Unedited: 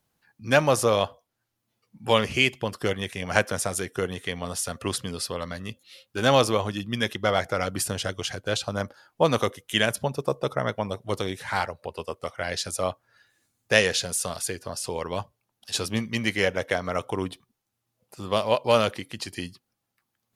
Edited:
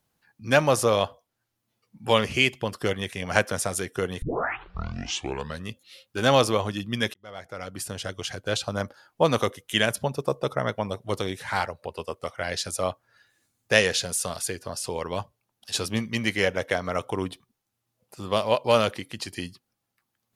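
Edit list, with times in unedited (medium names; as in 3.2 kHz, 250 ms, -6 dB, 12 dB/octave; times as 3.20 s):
4.22 s: tape start 1.44 s
7.14–8.55 s: fade in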